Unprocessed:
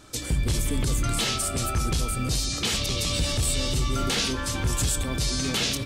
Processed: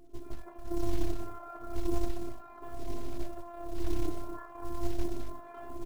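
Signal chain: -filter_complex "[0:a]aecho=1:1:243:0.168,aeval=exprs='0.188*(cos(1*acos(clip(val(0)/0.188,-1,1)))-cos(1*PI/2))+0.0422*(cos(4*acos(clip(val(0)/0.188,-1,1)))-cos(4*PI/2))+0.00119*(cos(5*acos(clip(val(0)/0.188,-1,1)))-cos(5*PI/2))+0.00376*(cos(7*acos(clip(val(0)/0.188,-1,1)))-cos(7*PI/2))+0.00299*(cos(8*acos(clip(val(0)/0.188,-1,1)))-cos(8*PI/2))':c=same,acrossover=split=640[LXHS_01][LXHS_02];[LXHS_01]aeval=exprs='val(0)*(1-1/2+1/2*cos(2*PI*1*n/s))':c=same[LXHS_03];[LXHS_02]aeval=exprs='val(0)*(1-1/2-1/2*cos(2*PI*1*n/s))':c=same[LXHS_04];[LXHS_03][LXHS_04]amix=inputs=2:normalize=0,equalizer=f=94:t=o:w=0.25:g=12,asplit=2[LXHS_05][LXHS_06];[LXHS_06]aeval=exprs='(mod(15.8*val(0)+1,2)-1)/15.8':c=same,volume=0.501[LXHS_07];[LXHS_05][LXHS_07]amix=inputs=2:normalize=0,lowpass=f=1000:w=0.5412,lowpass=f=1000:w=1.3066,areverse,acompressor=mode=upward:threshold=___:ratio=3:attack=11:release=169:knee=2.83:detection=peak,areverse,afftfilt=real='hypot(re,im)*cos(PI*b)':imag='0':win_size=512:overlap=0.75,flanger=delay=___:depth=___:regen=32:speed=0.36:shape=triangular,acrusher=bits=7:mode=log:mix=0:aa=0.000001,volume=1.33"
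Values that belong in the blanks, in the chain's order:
0.00794, 7.4, 2.3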